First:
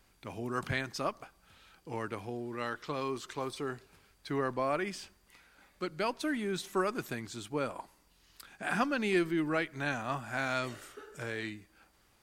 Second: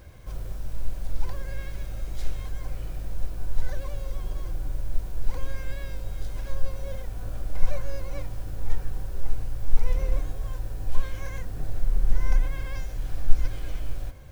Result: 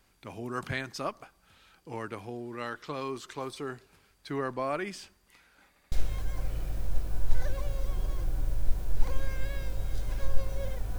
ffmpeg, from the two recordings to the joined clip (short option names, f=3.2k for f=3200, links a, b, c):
-filter_complex "[0:a]apad=whole_dur=10.98,atrim=end=10.98,asplit=3[a][b][c];[a]atrim=end=5.762[d];[b]atrim=start=5.678:end=5.762[e];[c]atrim=start=5.678:end=5.762[f];[1:a]atrim=start=2.188:end=7.25[g];[d][e]acrossfade=d=0.004:c1=hsin:c2=hsin[h];[h][f]acrossfade=d=0.004:c1=hsin:c2=hsin[i];[i][g]acrossfade=d=0.004:c1=hsin:c2=hsin"